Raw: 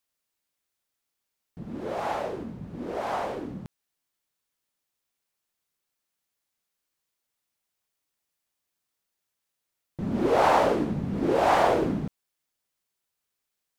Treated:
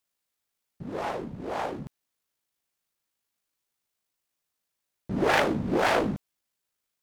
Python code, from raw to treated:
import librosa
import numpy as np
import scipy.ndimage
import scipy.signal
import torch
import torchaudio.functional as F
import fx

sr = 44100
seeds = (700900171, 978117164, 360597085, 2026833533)

y = fx.self_delay(x, sr, depth_ms=0.39)
y = fx.stretch_grains(y, sr, factor=0.51, grain_ms=38.0)
y = F.gain(torch.from_numpy(y), 1.0).numpy()